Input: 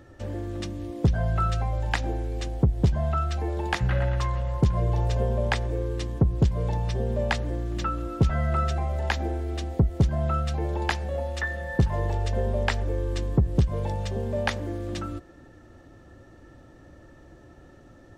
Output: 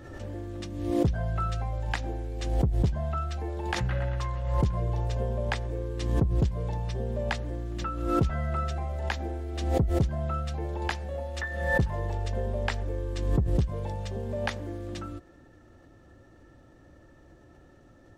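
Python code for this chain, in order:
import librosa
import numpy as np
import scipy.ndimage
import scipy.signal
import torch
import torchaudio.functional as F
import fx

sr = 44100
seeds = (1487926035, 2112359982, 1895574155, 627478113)

y = fx.pre_swell(x, sr, db_per_s=48.0)
y = y * librosa.db_to_amplitude(-5.0)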